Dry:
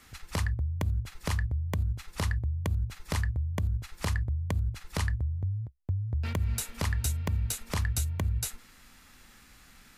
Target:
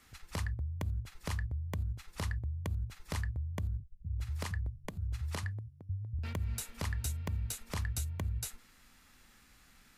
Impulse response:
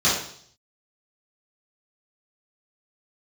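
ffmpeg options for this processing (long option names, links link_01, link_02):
-filter_complex "[0:a]asettb=1/sr,asplit=3[link_01][link_02][link_03];[link_01]atrim=end=3.804[link_04];[link_02]atrim=start=3.8:end=6.19,asetpts=PTS-STARTPTS,afade=type=in:duration=0.004:curve=qsin,afade=type=out:start_time=2.386:duration=0.004:curve=qsin,acrossover=split=150[link_05][link_06];[link_06]adelay=380[link_07];[link_05][link_07]amix=inputs=2:normalize=0,atrim=end_sample=105399[link_08];[link_03]atrim=start=6.186[link_09];[link_04][link_08]acrossfade=duration=0.004:curve1=hsin:curve2=qsin[link_10];[link_10][link_09]acrossfade=duration=0.004:curve1=qsin:curve2=hsin,volume=-6.5dB"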